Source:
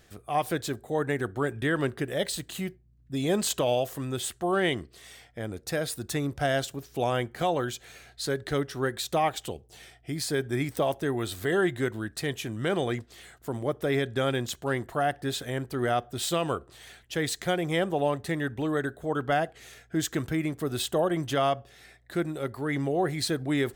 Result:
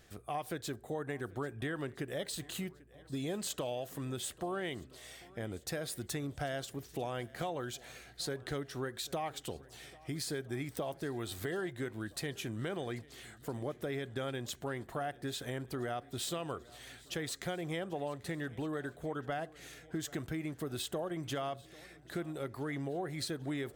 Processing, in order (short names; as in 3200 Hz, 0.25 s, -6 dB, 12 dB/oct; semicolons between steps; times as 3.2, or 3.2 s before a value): compressor 4:1, threshold -33 dBFS, peak gain reduction 10.5 dB; on a send: swung echo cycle 1.319 s, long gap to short 1.5:1, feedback 41%, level -22 dB; on the sum: gain -3 dB